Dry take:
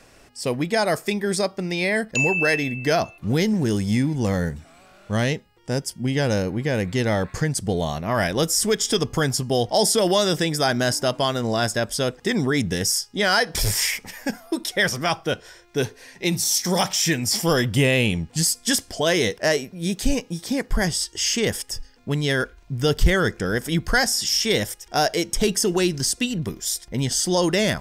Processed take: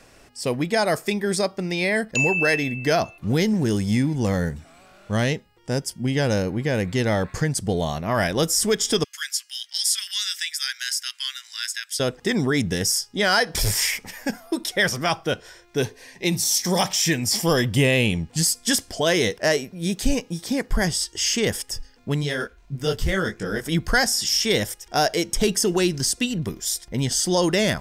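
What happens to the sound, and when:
9.04–12.00 s: steep high-pass 1.7 kHz
15.80–18.30 s: band-stop 1.4 kHz, Q 9.6
22.22–23.65 s: detune thickener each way 48 cents -> 33 cents

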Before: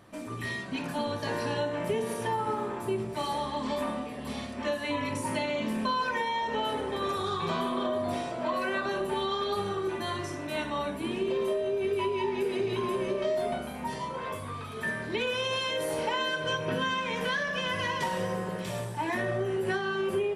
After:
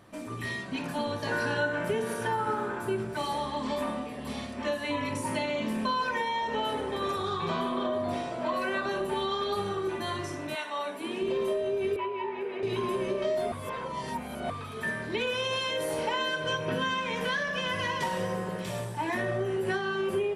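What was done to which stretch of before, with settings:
1.31–3.17 s: small resonant body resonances 1.5 kHz, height 17 dB, ringing for 35 ms
7.16–8.32 s: treble shelf 8 kHz -8 dB
10.54–11.21 s: high-pass 810 Hz -> 230 Hz
11.96–12.63 s: three-band isolator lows -13 dB, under 420 Hz, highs -23 dB, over 2.8 kHz
13.52–14.50 s: reverse

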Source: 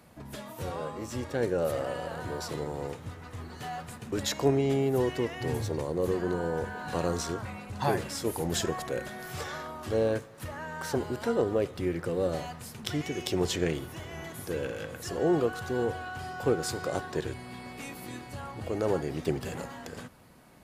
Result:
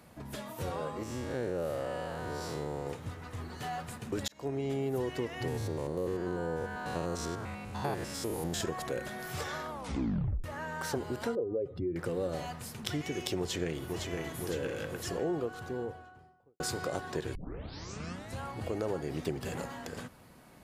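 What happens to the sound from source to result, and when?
1.03–2.87 s: spectral blur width 140 ms
4.28–4.90 s: fade in
5.48–8.61 s: spectrogram pixelated in time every 100 ms
9.70 s: tape stop 0.74 s
11.35–11.96 s: spectral contrast enhancement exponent 1.9
13.38–14.05 s: echo throw 510 ms, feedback 65%, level -8.5 dB
14.94–16.60 s: studio fade out
17.35 s: tape start 1.07 s
whole clip: compression 3:1, threshold -31 dBFS

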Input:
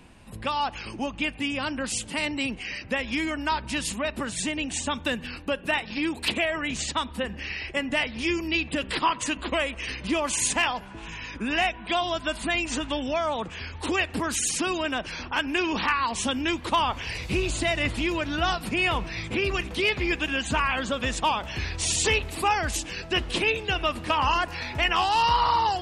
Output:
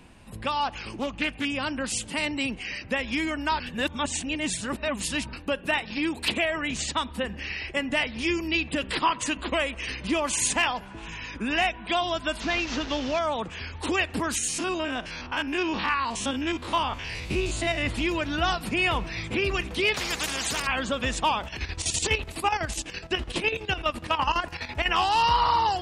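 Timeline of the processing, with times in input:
0.63–1.45 s: loudspeaker Doppler distortion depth 0.24 ms
3.60–5.33 s: reverse
12.40–13.19 s: one-bit delta coder 32 kbps, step -29.5 dBFS
14.38–17.87 s: spectrogram pixelated in time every 50 ms
19.94–20.67 s: spectrum-flattening compressor 4:1
21.44–24.89 s: square tremolo 12 Hz, depth 65%, duty 55%

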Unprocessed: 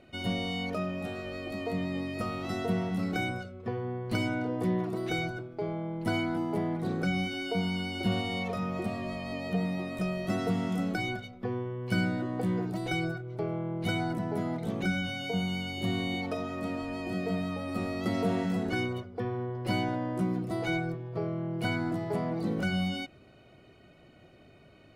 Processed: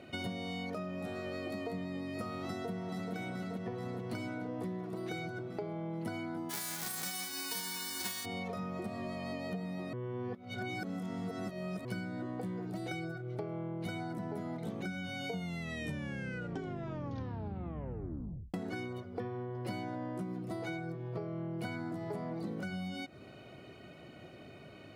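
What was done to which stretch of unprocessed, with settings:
2.45–3.14 s: echo throw 430 ms, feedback 65%, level -3 dB
6.49–8.24 s: formants flattened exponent 0.1
9.93–11.85 s: reverse
12.62–13.43 s: band-stop 990 Hz, Q 19
15.31 s: tape stop 3.23 s
whole clip: high-pass 91 Hz; dynamic bell 2.8 kHz, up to -6 dB, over -56 dBFS, Q 3.5; compression 12:1, threshold -41 dBFS; trim +5 dB

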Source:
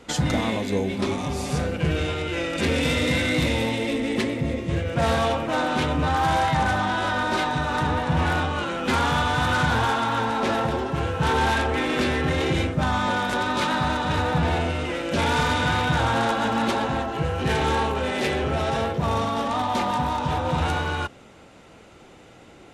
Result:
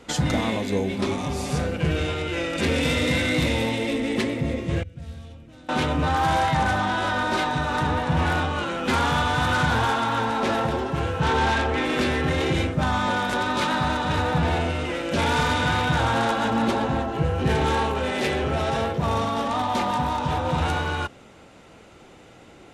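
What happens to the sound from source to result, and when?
4.83–5.69 s: amplifier tone stack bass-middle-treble 10-0-1
11.20–11.85 s: low-pass 7.6 kHz
16.50–17.66 s: tilt shelf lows +3 dB, about 710 Hz

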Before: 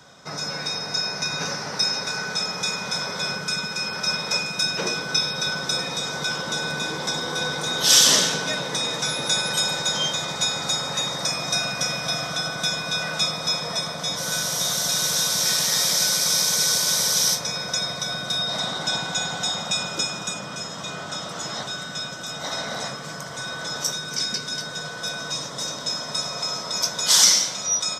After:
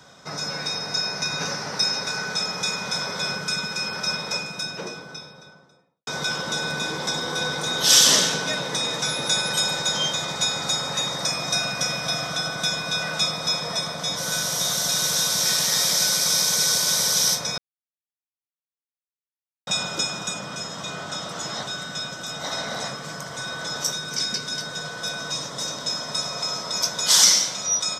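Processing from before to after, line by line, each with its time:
3.76–6.07 s: studio fade out
17.58–19.67 s: mute

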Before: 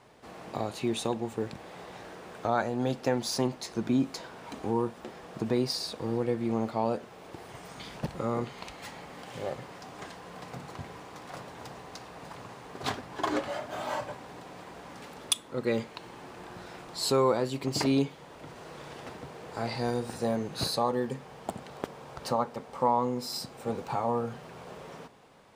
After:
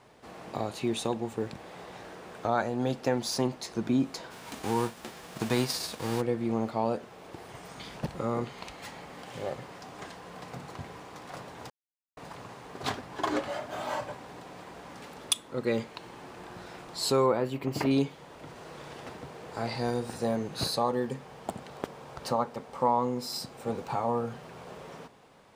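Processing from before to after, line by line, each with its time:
4.30–6.20 s: formants flattened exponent 0.6
11.70–12.17 s: mute
17.26–17.91 s: high-order bell 6.1 kHz -9.5 dB

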